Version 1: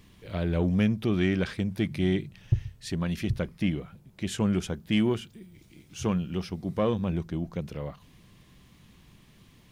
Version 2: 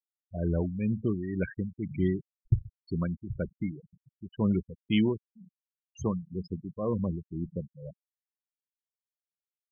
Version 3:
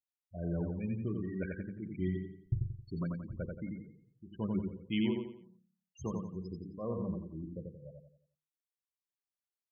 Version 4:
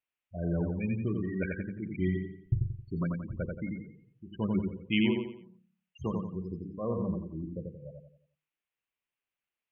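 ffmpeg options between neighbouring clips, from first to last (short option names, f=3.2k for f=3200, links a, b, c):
-af "tremolo=f=2:d=0.71,agate=range=-33dB:threshold=-51dB:ratio=3:detection=peak,afftfilt=real='re*gte(hypot(re,im),0.0398)':imag='im*gte(hypot(re,im),0.0398)':win_size=1024:overlap=0.75"
-filter_complex "[0:a]bandreject=f=50:t=h:w=6,bandreject=f=100:t=h:w=6,bandreject=f=150:t=h:w=6,bandreject=f=200:t=h:w=6,bandreject=f=250:t=h:w=6,bandreject=f=300:t=h:w=6,bandreject=f=350:t=h:w=6,bandreject=f=400:t=h:w=6,bandreject=f=450:t=h:w=6,bandreject=f=500:t=h:w=6,asplit=2[a][b];[b]aecho=0:1:88|176|264|352|440:0.668|0.254|0.0965|0.0367|0.0139[c];[a][c]amix=inputs=2:normalize=0,volume=-7.5dB"
-af "highshelf=f=3.7k:t=q:w=3:g=-11.5,volume=4.5dB"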